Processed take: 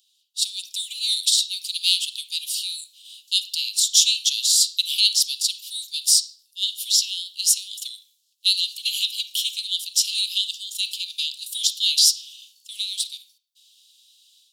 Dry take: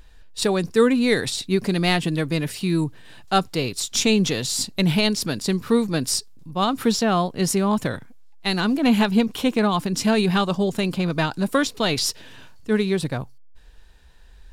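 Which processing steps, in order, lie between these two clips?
Butterworth high-pass 3,000 Hz 72 dB per octave
automatic gain control gain up to 10 dB
on a send: convolution reverb RT60 0.50 s, pre-delay 37 ms, DRR 11 dB

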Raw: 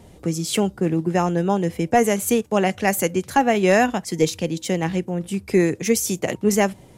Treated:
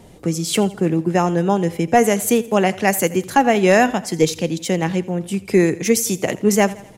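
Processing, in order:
parametric band 71 Hz −13 dB 0.43 octaves
on a send: repeating echo 83 ms, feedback 50%, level −19.5 dB
on the sum: level +3 dB

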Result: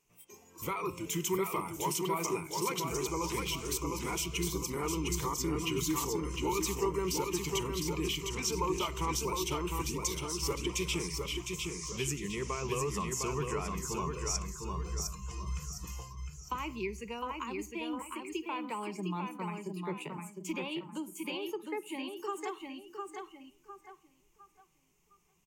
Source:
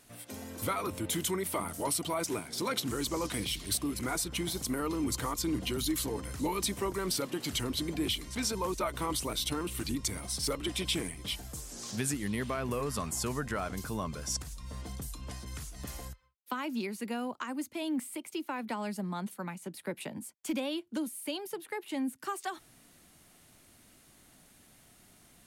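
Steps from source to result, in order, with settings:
EQ curve with evenly spaced ripples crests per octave 0.75, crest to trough 13 dB
repeating echo 707 ms, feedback 43%, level −4 dB
noise reduction from a noise print of the clip's start 13 dB
0:05.56–0:06.05: comb filter 6.9 ms, depth 61%
convolution reverb RT60 0.45 s, pre-delay 5 ms, DRR 17.5 dB
level −4 dB

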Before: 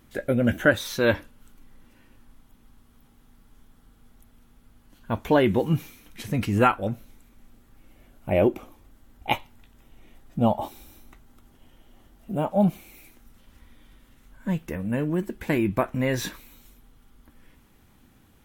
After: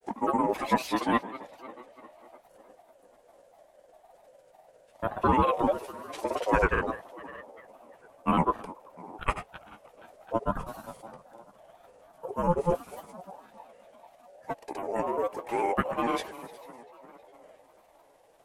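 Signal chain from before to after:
ring modulation 820 Hz
on a send: tape delay 326 ms, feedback 61%, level −16 dB, low-pass 4,500 Hz
on the sum: formants moved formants −4 semitones
granular cloud, pitch spread up and down by 3 semitones

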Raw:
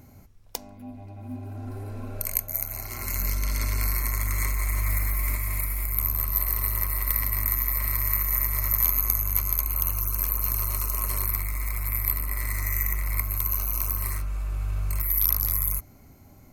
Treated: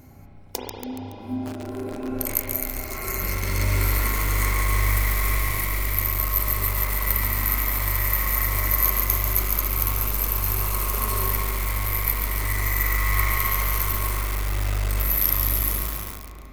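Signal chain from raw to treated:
0:12.81–0:13.71: parametric band 1,400 Hz +5 dB 1.6 octaves
reverb reduction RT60 0.89 s
dynamic equaliser 370 Hz, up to +6 dB, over −56 dBFS, Q 1.4
spring reverb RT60 3.3 s, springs 31/39 ms, chirp 70 ms, DRR −5 dB
feedback echo at a low word length 141 ms, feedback 80%, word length 5 bits, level −5 dB
level +2 dB

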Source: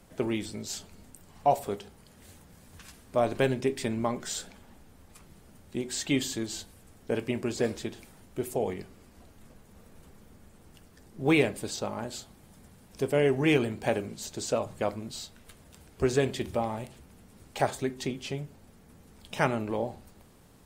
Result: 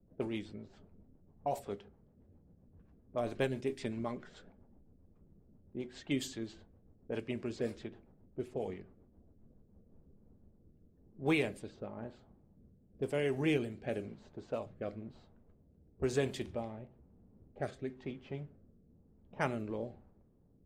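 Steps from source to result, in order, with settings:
rotating-speaker cabinet horn 7.5 Hz, later 1 Hz, at 0:09.42
low-pass that shuts in the quiet parts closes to 400 Hz, open at −25.5 dBFS
level −6.5 dB

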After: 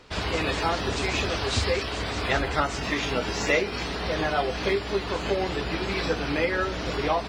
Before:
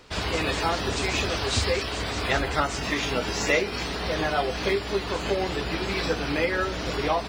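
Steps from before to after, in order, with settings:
high-shelf EQ 8,500 Hz −9 dB

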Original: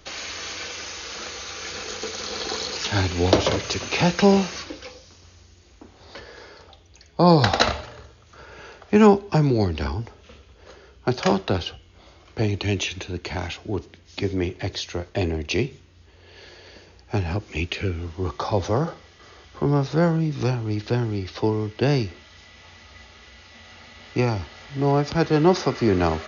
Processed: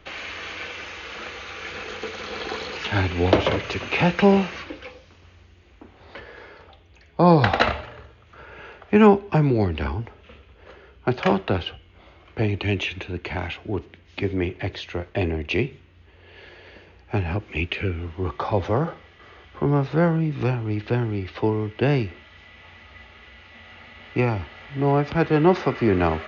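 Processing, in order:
high shelf with overshoot 3,800 Hz −12 dB, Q 1.5

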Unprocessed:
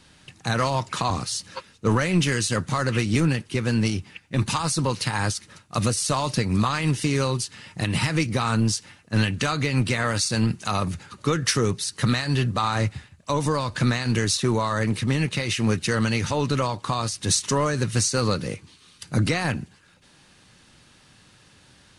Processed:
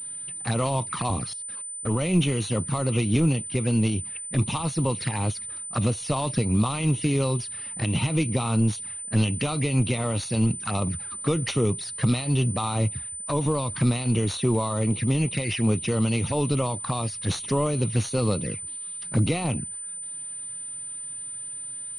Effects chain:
0:01.33–0:02.02: output level in coarse steps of 23 dB
flanger swept by the level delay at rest 7.8 ms, full sweep at −21 dBFS
switching amplifier with a slow clock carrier 9,000 Hz

